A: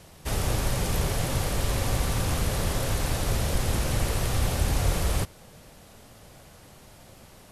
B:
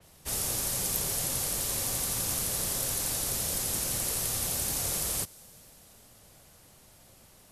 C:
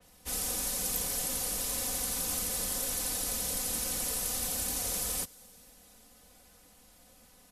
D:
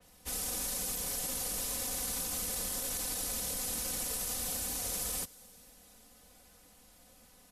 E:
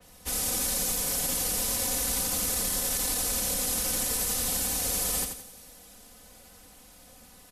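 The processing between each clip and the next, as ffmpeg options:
ffmpeg -i in.wav -filter_complex "[0:a]aemphasis=mode=production:type=cd,acrossover=split=130|650|7200[link_01][link_02][link_03][link_04];[link_01]acompressor=threshold=-34dB:ratio=6[link_05];[link_05][link_02][link_03][link_04]amix=inputs=4:normalize=0,adynamicequalizer=threshold=0.00447:dfrequency=4000:dqfactor=0.7:tfrequency=4000:tqfactor=0.7:attack=5:release=100:ratio=0.375:range=4:mode=boostabove:tftype=highshelf,volume=-8.5dB" out.wav
ffmpeg -i in.wav -af "aecho=1:1:4:0.95,volume=-5dB" out.wav
ffmpeg -i in.wav -af "alimiter=level_in=1.5dB:limit=-24dB:level=0:latency=1:release=16,volume=-1.5dB,volume=-1dB" out.wav
ffmpeg -i in.wav -af "aecho=1:1:85|170|255|340:0.473|0.18|0.0683|0.026,volume=6.5dB" out.wav

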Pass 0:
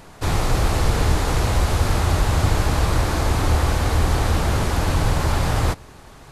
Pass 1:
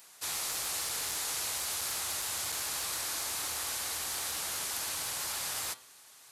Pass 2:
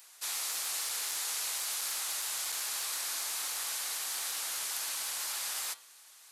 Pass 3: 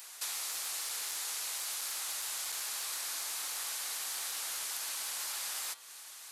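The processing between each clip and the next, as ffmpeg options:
ffmpeg -i in.wav -af "asoftclip=type=hard:threshold=-10.5dB,aderivative,bandreject=frequency=128.6:width_type=h:width=4,bandreject=frequency=257.2:width_type=h:width=4,bandreject=frequency=385.8:width_type=h:width=4,bandreject=frequency=514.4:width_type=h:width=4,bandreject=frequency=643:width_type=h:width=4,bandreject=frequency=771.6:width_type=h:width=4,bandreject=frequency=900.2:width_type=h:width=4,bandreject=frequency=1028.8:width_type=h:width=4,bandreject=frequency=1157.4:width_type=h:width=4,bandreject=frequency=1286:width_type=h:width=4,bandreject=frequency=1414.6:width_type=h:width=4,bandreject=frequency=1543.2:width_type=h:width=4,bandreject=frequency=1671.8:width_type=h:width=4,bandreject=frequency=1800.4:width_type=h:width=4,bandreject=frequency=1929:width_type=h:width=4,bandreject=frequency=2057.6:width_type=h:width=4,bandreject=frequency=2186.2:width_type=h:width=4,bandreject=frequency=2314.8:width_type=h:width=4,bandreject=frequency=2443.4:width_type=h:width=4,bandreject=frequency=2572:width_type=h:width=4,bandreject=frequency=2700.6:width_type=h:width=4,bandreject=frequency=2829.2:width_type=h:width=4,bandreject=frequency=2957.8:width_type=h:width=4,bandreject=frequency=3086.4:width_type=h:width=4,bandreject=frequency=3215:width_type=h:width=4,bandreject=frequency=3343.6:width_type=h:width=4,bandreject=frequency=3472.2:width_type=h:width=4,bandreject=frequency=3600.8:width_type=h:width=4,bandreject=frequency=3729.4:width_type=h:width=4,bandreject=frequency=3858:width_type=h:width=4,bandreject=frequency=3986.6:width_type=h:width=4,bandreject=frequency=4115.2:width_type=h:width=4,bandreject=frequency=4243.8:width_type=h:width=4,bandreject=frequency=4372.4:width_type=h:width=4" out.wav
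ffmpeg -i in.wav -af "highpass=frequency=1000:poles=1" out.wav
ffmpeg -i in.wav -af "acompressor=threshold=-44dB:ratio=4,volume=7dB" out.wav

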